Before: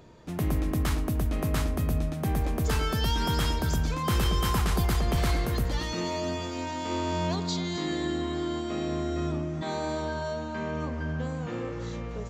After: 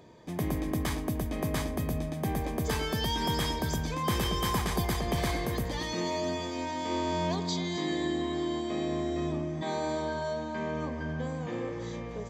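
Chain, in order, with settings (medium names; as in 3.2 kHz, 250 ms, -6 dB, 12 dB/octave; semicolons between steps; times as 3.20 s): comb of notches 1.4 kHz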